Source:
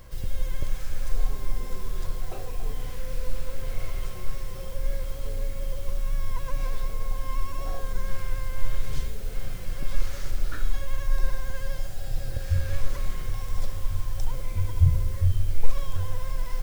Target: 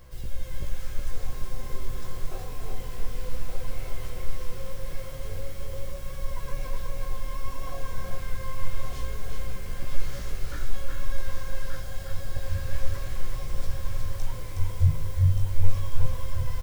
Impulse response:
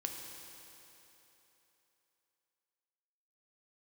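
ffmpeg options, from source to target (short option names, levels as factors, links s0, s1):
-filter_complex "[0:a]asplit=2[s0][s1];[s1]aecho=0:1:1178:0.531[s2];[s0][s2]amix=inputs=2:normalize=0,flanger=delay=16:depth=4.9:speed=0.3,asplit=2[s3][s4];[s4]aecho=0:1:367:0.631[s5];[s3][s5]amix=inputs=2:normalize=0"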